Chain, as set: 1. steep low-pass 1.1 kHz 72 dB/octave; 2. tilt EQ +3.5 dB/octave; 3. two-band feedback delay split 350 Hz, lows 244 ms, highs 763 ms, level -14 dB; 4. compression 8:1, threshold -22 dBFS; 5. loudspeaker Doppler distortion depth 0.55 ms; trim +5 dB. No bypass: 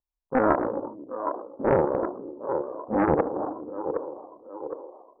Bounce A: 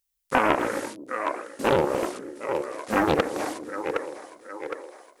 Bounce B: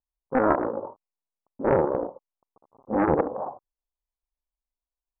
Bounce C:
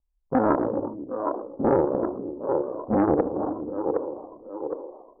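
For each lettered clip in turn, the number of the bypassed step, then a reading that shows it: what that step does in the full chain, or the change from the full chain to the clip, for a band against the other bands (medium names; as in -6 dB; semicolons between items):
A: 1, 2 kHz band +9.0 dB; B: 3, momentary loudness spread change -3 LU; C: 2, 2 kHz band -6.5 dB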